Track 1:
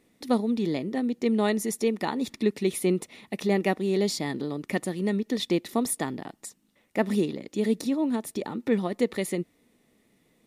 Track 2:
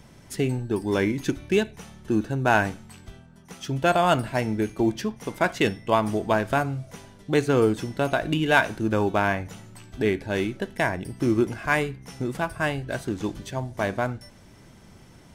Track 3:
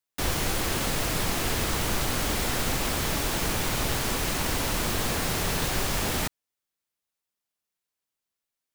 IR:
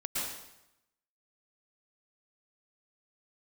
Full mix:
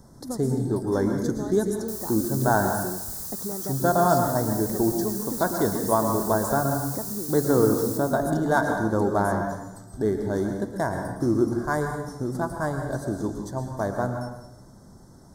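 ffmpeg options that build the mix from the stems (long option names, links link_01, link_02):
-filter_complex "[0:a]acompressor=threshold=-34dB:ratio=6,volume=2.5dB[link_01];[1:a]volume=-3.5dB,asplit=2[link_02][link_03];[link_03]volume=-5.5dB[link_04];[2:a]aderivative,adelay=1700,volume=-8dB,asplit=2[link_05][link_06];[link_06]volume=-5.5dB[link_07];[3:a]atrim=start_sample=2205[link_08];[link_04][link_07]amix=inputs=2:normalize=0[link_09];[link_09][link_08]afir=irnorm=-1:irlink=0[link_10];[link_01][link_02][link_05][link_10]amix=inputs=4:normalize=0,asuperstop=centerf=2600:order=4:qfactor=0.73"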